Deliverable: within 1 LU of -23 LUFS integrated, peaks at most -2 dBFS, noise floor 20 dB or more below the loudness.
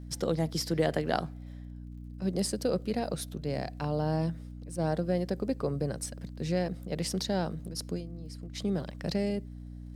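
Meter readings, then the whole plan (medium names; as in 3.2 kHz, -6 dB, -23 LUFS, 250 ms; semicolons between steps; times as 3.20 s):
tick rate 33 per s; hum 60 Hz; highest harmonic 300 Hz; hum level -41 dBFS; loudness -32.5 LUFS; peak level -12.0 dBFS; loudness target -23.0 LUFS
-> de-click; de-hum 60 Hz, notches 5; trim +9.5 dB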